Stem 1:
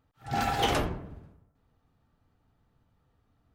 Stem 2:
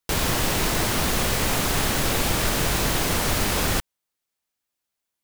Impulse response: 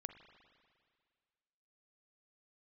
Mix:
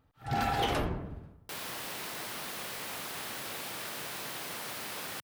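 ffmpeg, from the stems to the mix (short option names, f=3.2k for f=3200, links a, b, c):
-filter_complex "[0:a]volume=2.5dB[a];[1:a]highpass=f=110:w=0.5412,highpass=f=110:w=1.3066,lowshelf=f=390:g=-11.5,adelay=1400,volume=-13.5dB[b];[a][b]amix=inputs=2:normalize=0,equalizer=f=6.8k:t=o:w=0.66:g=-4.5,alimiter=limit=-20dB:level=0:latency=1:release=213"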